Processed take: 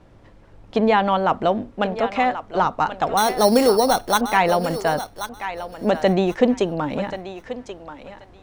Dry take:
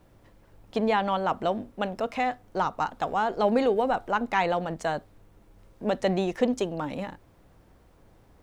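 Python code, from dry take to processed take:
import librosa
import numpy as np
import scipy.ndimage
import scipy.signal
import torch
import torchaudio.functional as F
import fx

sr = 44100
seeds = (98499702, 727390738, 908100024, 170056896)

p1 = fx.air_absorb(x, sr, metres=69.0)
p2 = fx.sample_hold(p1, sr, seeds[0], rate_hz=4900.0, jitter_pct=0, at=(3.17, 4.21))
p3 = p2 + fx.echo_thinned(p2, sr, ms=1083, feedback_pct=18, hz=490.0, wet_db=-10, dry=0)
y = p3 * librosa.db_to_amplitude(7.5)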